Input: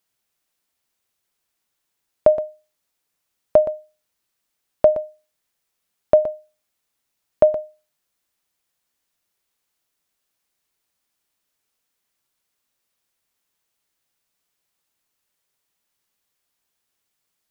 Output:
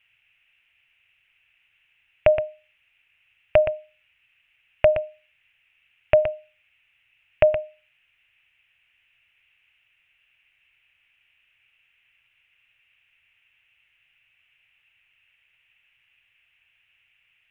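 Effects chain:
low-shelf EQ 220 Hz −4.5 dB
in parallel at +1.5 dB: brickwall limiter −12.5 dBFS, peak gain reduction 8.5 dB
on the sum: drawn EQ curve 120 Hz 0 dB, 200 Hz −18 dB, 440 Hz −18 dB, 730 Hz −13 dB, 1,100 Hz −13 dB, 2,700 Hz +13 dB, 4,300 Hz −27 dB
level +8 dB

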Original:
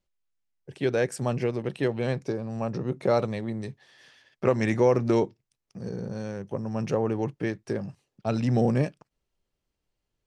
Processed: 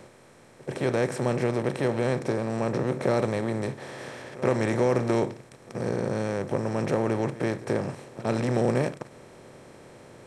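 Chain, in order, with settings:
compressor on every frequency bin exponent 0.4
echo ahead of the sound 84 ms −17.5 dB
level −5.5 dB

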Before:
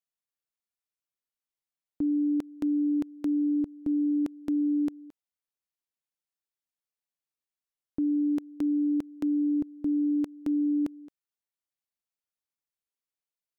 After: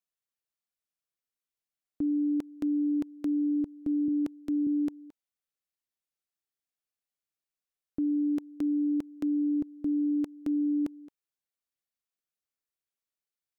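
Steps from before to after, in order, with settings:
notch filter 910 Hz, Q 7.5
0:04.08–0:04.67: multiband upward and downward expander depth 40%
level −1.5 dB

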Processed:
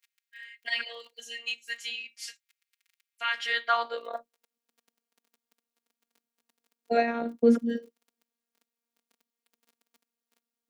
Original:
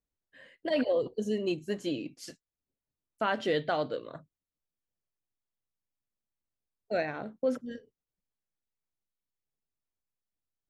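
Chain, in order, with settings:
surface crackle 11 per second −51 dBFS
high-pass filter sweep 2,100 Hz → 280 Hz, 0:03.33–0:04.67
phases set to zero 233 Hz
level +7 dB

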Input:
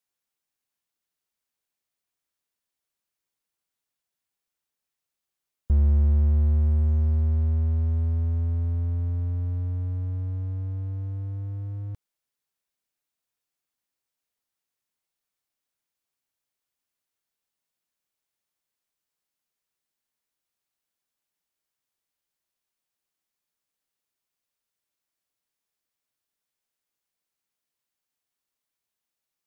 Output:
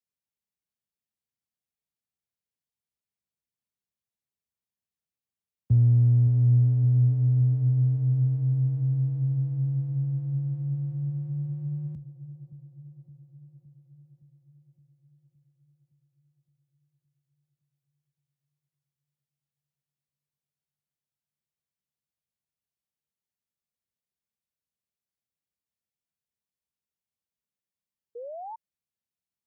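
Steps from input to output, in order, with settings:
drawn EQ curve 170 Hz 0 dB, 250 Hz −11 dB, 380 Hz −7 dB, 1,300 Hz −14 dB, 1,900 Hz −11 dB
on a send: delay with a low-pass on its return 566 ms, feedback 64%, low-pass 770 Hz, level −14 dB
on the sum: frequency shifter +47 Hz
sound drawn into the spectrogram rise, 0:28.15–0:28.56, 460–930 Hz −38 dBFS

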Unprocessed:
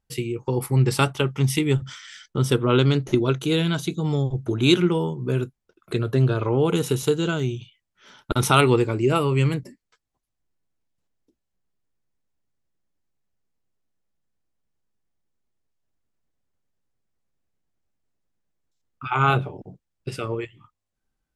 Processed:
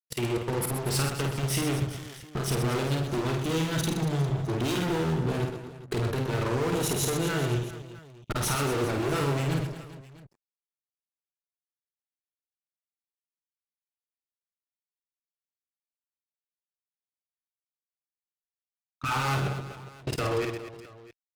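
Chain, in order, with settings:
fuzz pedal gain 30 dB, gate −40 dBFS
output level in coarse steps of 21 dB
reverse bouncing-ball delay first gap 50 ms, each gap 1.5×, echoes 5
level −8 dB

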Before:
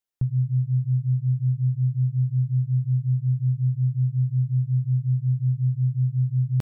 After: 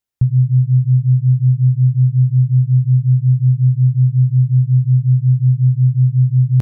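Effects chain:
parametric band 81 Hz +9.5 dB 2 octaves
level +3.5 dB

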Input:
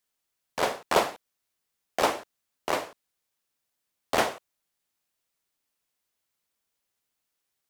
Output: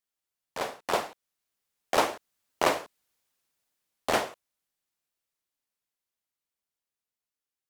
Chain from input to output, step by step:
source passing by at 0:02.88, 10 m/s, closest 7.6 metres
level +4 dB

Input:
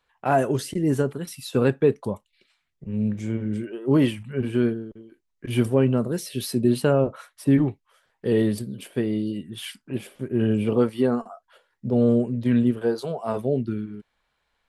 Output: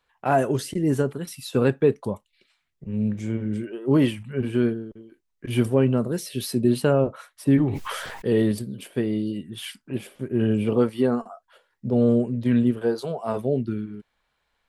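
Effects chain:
0:07.66–0:08.52: level that may fall only so fast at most 30 dB per second

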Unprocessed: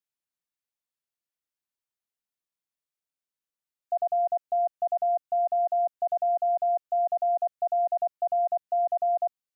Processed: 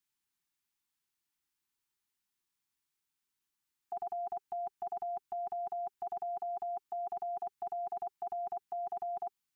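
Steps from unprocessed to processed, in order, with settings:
Chebyshev band-stop filter 400–810 Hz, order 3
level +5.5 dB

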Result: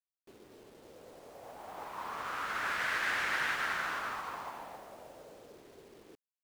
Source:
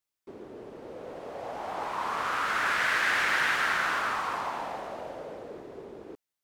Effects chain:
low-shelf EQ 93 Hz +5 dB
bit-depth reduction 8 bits, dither none
expander for the loud parts 1.5 to 1, over −38 dBFS
level −6 dB

